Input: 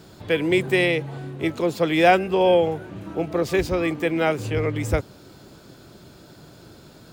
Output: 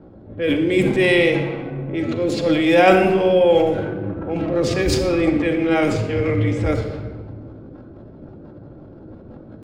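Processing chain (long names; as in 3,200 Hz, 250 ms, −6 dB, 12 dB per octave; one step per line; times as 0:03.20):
low-pass that shuts in the quiet parts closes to 690 Hz, open at −16.5 dBFS
rotating-speaker cabinet horn 0.8 Hz, later 8 Hz, at 0:02.22
in parallel at +1 dB: downward compressor, threshold −31 dBFS, peak gain reduction 18.5 dB
on the sum: tempo change 0.74×
transient designer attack −6 dB, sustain +10 dB
on a send at −2.5 dB: convolution reverb RT60 1.4 s, pre-delay 4 ms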